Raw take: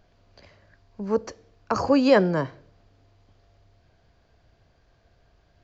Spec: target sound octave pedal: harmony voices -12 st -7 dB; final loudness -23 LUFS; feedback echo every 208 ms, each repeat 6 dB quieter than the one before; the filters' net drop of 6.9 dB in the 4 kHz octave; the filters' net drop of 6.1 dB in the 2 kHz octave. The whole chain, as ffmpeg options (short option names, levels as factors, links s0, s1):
-filter_complex "[0:a]equalizer=f=2000:t=o:g=-6.5,equalizer=f=4000:t=o:g=-7,aecho=1:1:208|416|624|832|1040|1248:0.501|0.251|0.125|0.0626|0.0313|0.0157,asplit=2[s0][s1];[s1]asetrate=22050,aresample=44100,atempo=2,volume=0.447[s2];[s0][s2]amix=inputs=2:normalize=0"